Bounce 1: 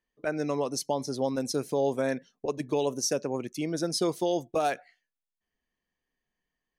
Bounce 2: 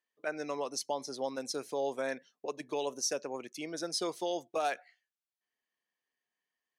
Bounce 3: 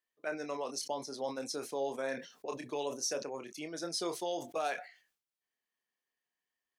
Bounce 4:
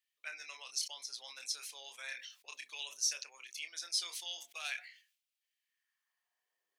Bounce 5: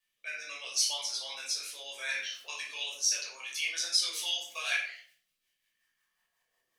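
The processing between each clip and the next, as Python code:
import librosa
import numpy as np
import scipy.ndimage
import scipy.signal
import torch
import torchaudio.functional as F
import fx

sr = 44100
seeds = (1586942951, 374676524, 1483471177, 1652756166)

y1 = fx.weighting(x, sr, curve='A')
y1 = F.gain(torch.from_numpy(y1), -3.5).numpy()
y2 = fx.chorus_voices(y1, sr, voices=4, hz=1.2, base_ms=27, depth_ms=3.0, mix_pct=25)
y2 = fx.sustainer(y2, sr, db_per_s=120.0)
y3 = fx.octave_divider(y2, sr, octaves=2, level_db=0.0)
y3 = fx.filter_sweep_highpass(y3, sr, from_hz=2600.0, to_hz=410.0, start_s=5.58, end_s=6.66, q=1.7)
y3 = F.gain(torch.from_numpy(y3), 1.5).numpy()
y4 = fx.rotary_switch(y3, sr, hz=0.75, then_hz=5.5, switch_at_s=3.78)
y4 = fx.room_shoebox(y4, sr, seeds[0], volume_m3=560.0, walls='furnished', distance_m=5.6)
y4 = F.gain(torch.from_numpy(y4), 4.5).numpy()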